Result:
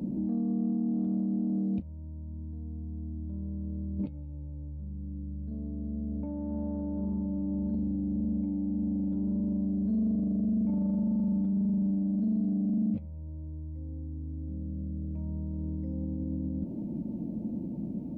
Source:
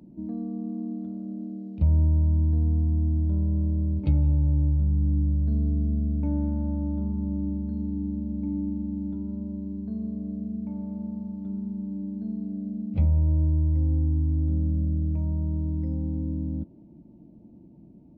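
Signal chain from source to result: 5.51–7.75 bell 680 Hz +9 dB 2.2 oct; negative-ratio compressor -35 dBFS, ratio -1; limiter -30.5 dBFS, peak gain reduction 11 dB; soft clip -27 dBFS, distortion -28 dB; small resonant body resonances 220/510 Hz, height 8 dB, ringing for 25 ms; gain +1.5 dB

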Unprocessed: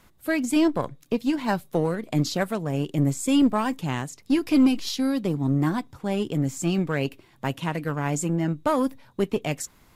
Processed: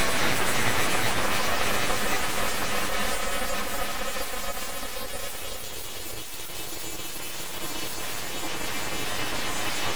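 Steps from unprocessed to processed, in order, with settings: frequency quantiser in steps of 2 st; HPF 290 Hz 6 dB/oct; Paulstretch 42×, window 0.25 s, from 3.64; full-wave rectifier; gain +4.5 dB

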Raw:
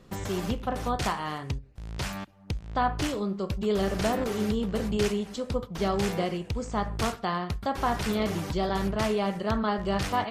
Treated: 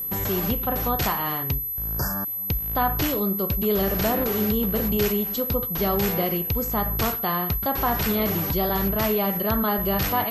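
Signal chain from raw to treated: spectral repair 1.81–2.33, 1800–4600 Hz before; in parallel at -1.5 dB: limiter -23.5 dBFS, peak gain reduction 10 dB; on the sum: whine 12000 Hz -27 dBFS

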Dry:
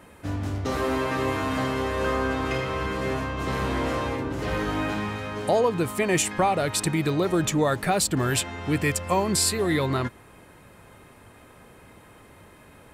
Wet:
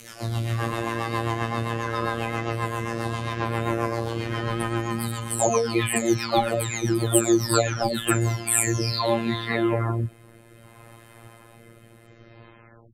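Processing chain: spectral delay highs early, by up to 0.871 s; robotiser 115 Hz; rotary speaker horn 7.5 Hz, later 0.6 Hz, at 7.92; gain +7.5 dB

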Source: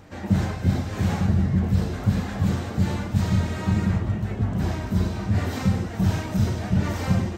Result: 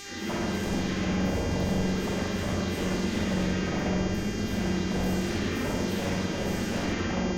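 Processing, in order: spectral delay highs early, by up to 0.434 s; fixed phaser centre 300 Hz, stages 4; wavefolder -28 dBFS; buzz 400 Hz, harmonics 17, -44 dBFS 0 dB/oct; reverb RT60 1.4 s, pre-delay 43 ms, DRR -3 dB

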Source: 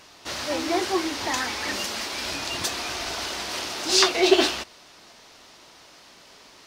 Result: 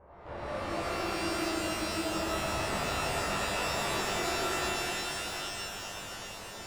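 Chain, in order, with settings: half-waves squared off; Bessel low-pass 640 Hz, order 4; bell 260 Hz -15 dB 1.4 oct; compressor 5:1, threshold -38 dBFS, peak gain reduction 18.5 dB; tube stage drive 43 dB, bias 0.5; spectral freeze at 1.06, 0.97 s; shimmer reverb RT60 3.8 s, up +12 st, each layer -2 dB, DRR -11 dB

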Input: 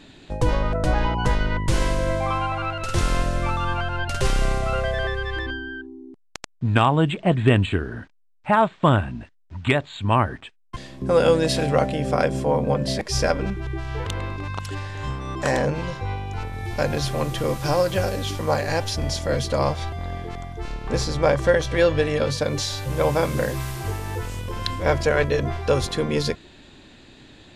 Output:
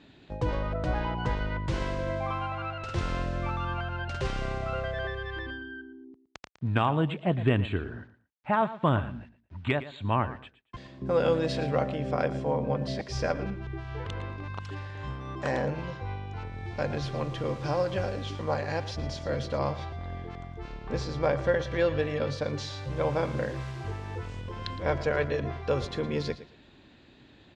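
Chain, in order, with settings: HPF 46 Hz; air absorption 130 m; feedback echo 0.114 s, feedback 22%, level -15 dB; gain -7 dB

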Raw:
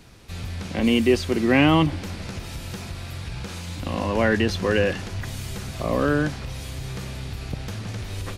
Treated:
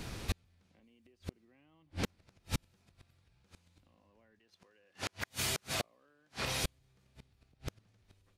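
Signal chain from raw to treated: 4.39–6.64 HPF 600 Hz 6 dB/oct; compressor 5:1, threshold -30 dBFS, peak gain reduction 15.5 dB; flipped gate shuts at -26 dBFS, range -41 dB; gain +5.5 dB

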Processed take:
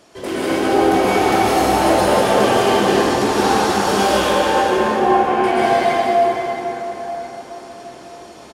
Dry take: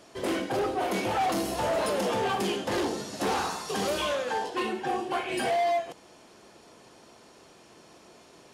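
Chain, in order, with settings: 4.5–5.44 LPF 1900 Hz 12 dB/oct; speakerphone echo 0.21 s, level -11 dB; reverb RT60 4.8 s, pre-delay 0.108 s, DRR -9.5 dB; gain +3 dB

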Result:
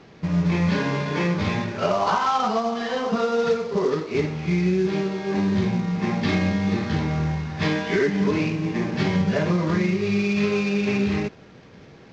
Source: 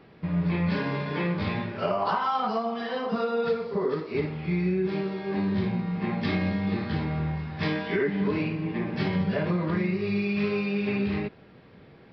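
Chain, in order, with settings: CVSD 32 kbps; gain +5 dB

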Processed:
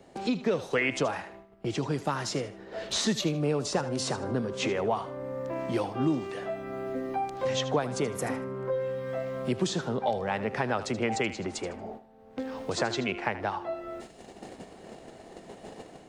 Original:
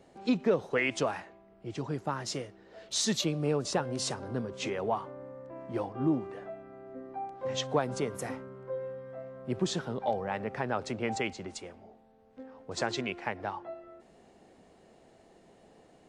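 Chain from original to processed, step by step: gate -56 dBFS, range -14 dB; AGC gain up to 6.5 dB; thinning echo 77 ms, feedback 22%, level -13.5 dB; three-band squash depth 70%; gain -3 dB

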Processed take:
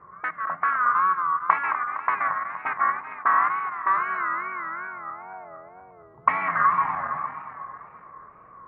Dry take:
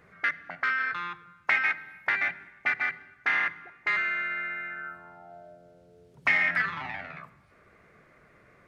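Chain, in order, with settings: regenerating reverse delay 0.116 s, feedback 76%, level -8.5 dB; wow and flutter 130 cents; synth low-pass 1100 Hz, resonance Q 13

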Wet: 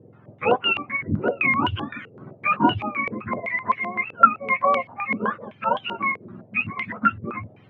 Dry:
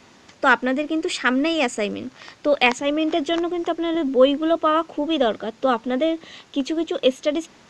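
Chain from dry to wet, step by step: spectrum mirrored in octaves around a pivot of 840 Hz; stepped low-pass 7.8 Hz 470–3100 Hz; gain -4.5 dB

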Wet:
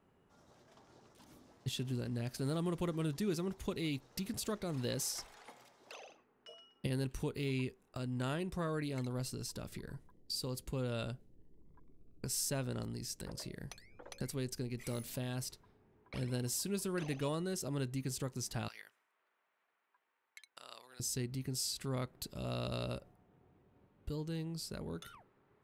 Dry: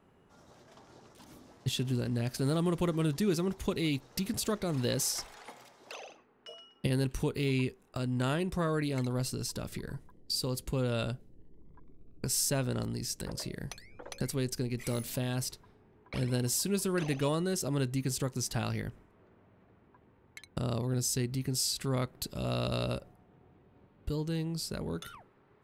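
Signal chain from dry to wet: 18.68–21 HPF 1300 Hz 12 dB/oct; gain -6.5 dB

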